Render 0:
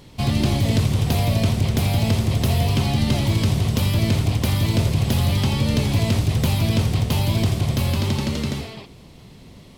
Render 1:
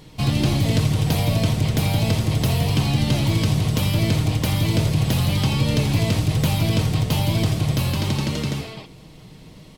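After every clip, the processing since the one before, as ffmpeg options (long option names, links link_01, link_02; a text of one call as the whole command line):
ffmpeg -i in.wav -af "aecho=1:1:6.4:0.41" out.wav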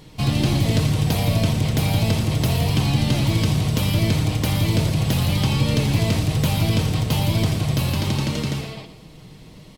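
ffmpeg -i in.wav -af "aecho=1:1:117|234:0.282|0.0507" out.wav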